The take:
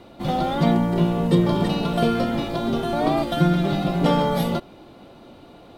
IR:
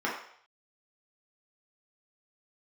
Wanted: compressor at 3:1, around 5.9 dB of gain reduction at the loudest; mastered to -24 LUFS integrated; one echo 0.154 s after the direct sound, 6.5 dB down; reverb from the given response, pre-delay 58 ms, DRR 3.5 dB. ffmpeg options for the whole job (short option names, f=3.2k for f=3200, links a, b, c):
-filter_complex "[0:a]acompressor=threshold=-21dB:ratio=3,aecho=1:1:154:0.473,asplit=2[a][b];[1:a]atrim=start_sample=2205,adelay=58[c];[b][c]afir=irnorm=-1:irlink=0,volume=-13.5dB[d];[a][d]amix=inputs=2:normalize=0,volume=-1.5dB"